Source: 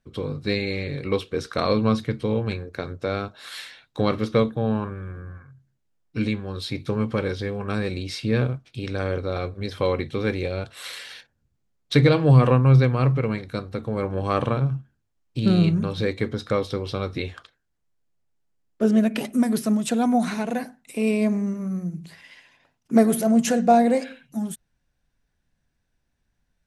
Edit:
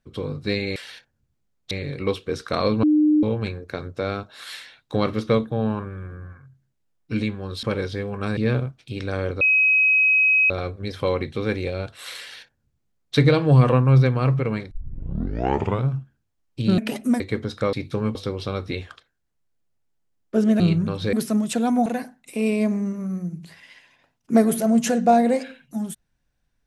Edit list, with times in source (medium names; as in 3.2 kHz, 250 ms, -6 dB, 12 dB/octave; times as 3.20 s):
1.88–2.28 s: bleep 303 Hz -13.5 dBFS
6.68–7.10 s: move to 16.62 s
7.84–8.24 s: delete
9.28 s: add tone 2.54 kHz -14 dBFS 1.09 s
10.98–11.93 s: copy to 0.76 s
13.49 s: tape start 1.16 s
15.56–16.09 s: swap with 19.07–19.49 s
20.22–20.47 s: delete